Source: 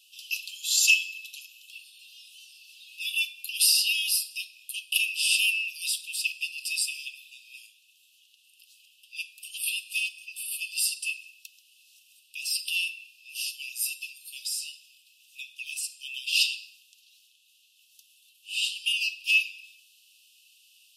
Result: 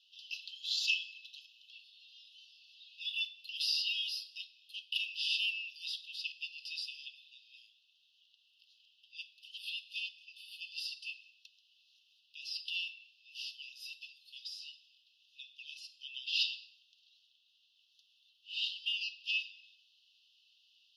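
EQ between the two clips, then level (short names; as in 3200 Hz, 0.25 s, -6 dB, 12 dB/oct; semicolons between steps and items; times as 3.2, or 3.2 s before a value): LPF 3200 Hz 12 dB/oct; fixed phaser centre 2400 Hz, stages 6; 0.0 dB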